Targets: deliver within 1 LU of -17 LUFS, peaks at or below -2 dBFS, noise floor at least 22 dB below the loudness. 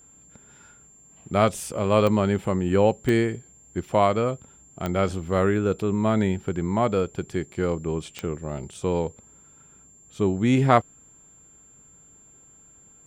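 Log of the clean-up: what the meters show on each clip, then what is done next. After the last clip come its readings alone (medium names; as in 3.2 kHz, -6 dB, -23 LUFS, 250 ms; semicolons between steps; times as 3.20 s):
clicks found 4; steady tone 7.3 kHz; tone level -51 dBFS; loudness -24.0 LUFS; peak level -4.0 dBFS; loudness target -17.0 LUFS
-> de-click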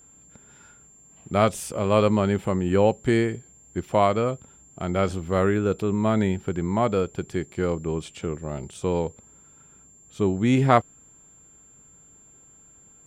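clicks found 0; steady tone 7.3 kHz; tone level -51 dBFS
-> band-stop 7.3 kHz, Q 30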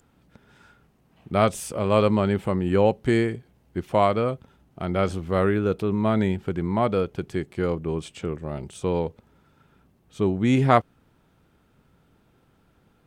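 steady tone not found; loudness -24.0 LUFS; peak level -4.0 dBFS; loudness target -17.0 LUFS
-> trim +7 dB; peak limiter -2 dBFS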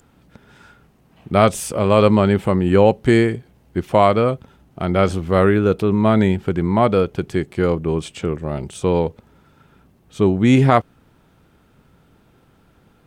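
loudness -17.5 LUFS; peak level -2.0 dBFS; noise floor -56 dBFS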